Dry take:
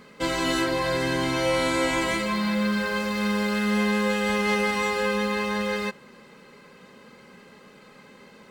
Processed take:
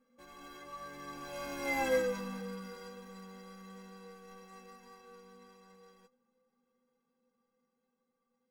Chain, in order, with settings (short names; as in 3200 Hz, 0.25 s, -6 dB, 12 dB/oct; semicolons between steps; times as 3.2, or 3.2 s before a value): median filter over 15 samples; Doppler pass-by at 1.88, 31 m/s, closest 7.9 m; metallic resonator 240 Hz, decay 0.24 s, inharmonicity 0.03; gain +8.5 dB